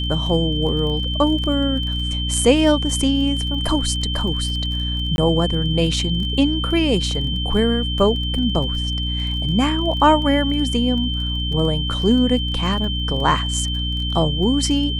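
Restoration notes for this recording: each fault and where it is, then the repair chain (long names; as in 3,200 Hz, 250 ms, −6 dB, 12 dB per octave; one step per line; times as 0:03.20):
surface crackle 22 per second −28 dBFS
mains hum 60 Hz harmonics 5 −24 dBFS
whistle 3,100 Hz −25 dBFS
0:05.16–0:05.18: drop-out 21 ms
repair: click removal
notch filter 3,100 Hz, Q 30
hum removal 60 Hz, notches 5
repair the gap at 0:05.16, 21 ms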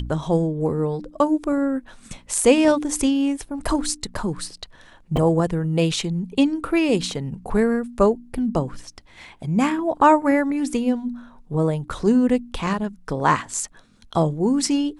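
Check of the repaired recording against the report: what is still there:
none of them is left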